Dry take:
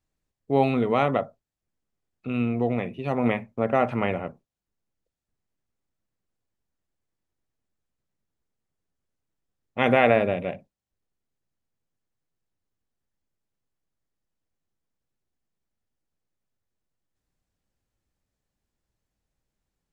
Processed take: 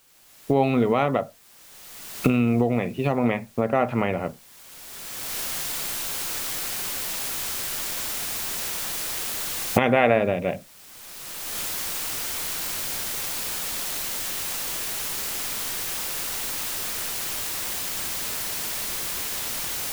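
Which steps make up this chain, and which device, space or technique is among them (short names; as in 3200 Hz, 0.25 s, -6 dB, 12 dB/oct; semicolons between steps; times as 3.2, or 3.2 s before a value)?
cheap recorder with automatic gain (white noise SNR 29 dB; recorder AGC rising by 23 dB/s)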